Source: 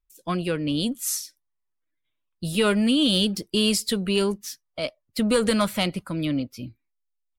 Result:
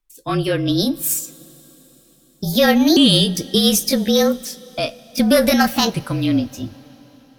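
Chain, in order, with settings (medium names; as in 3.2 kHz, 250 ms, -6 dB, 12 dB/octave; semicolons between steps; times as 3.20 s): sawtooth pitch modulation +6 st, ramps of 1483 ms; two-slope reverb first 0.23 s, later 4.5 s, from -19 dB, DRR 13.5 dB; frequency shift -35 Hz; trim +8 dB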